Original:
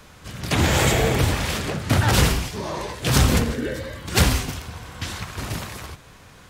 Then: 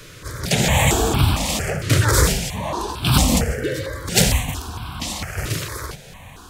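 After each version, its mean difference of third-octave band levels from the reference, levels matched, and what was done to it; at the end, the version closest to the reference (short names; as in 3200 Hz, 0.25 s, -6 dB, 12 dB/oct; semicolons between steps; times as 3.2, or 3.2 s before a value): 4.0 dB: dynamic EQ 7600 Hz, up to +4 dB, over -41 dBFS, Q 1.9; in parallel at -1 dB: compressor, threshold -32 dBFS, peak gain reduction 18.5 dB; on the sum: overloaded stage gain 6 dB; step phaser 4.4 Hz 220–1900 Hz; gain +3.5 dB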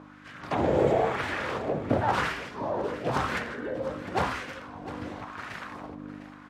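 9.0 dB: low shelf 480 Hz +8 dB; buzz 50 Hz, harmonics 6, -29 dBFS -1 dB/oct; wah 0.95 Hz 470–1700 Hz, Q 2; on a send: echo 0.704 s -14 dB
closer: first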